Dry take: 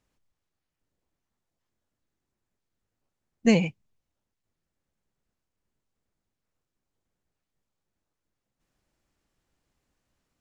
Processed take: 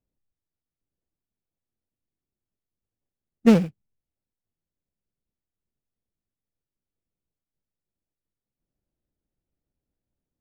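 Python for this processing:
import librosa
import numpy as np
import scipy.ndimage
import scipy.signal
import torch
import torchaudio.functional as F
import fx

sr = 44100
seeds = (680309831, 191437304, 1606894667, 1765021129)

y = scipy.signal.medfilt(x, 41)
y = fx.upward_expand(y, sr, threshold_db=-40.0, expansion=1.5)
y = y * librosa.db_to_amplitude(6.0)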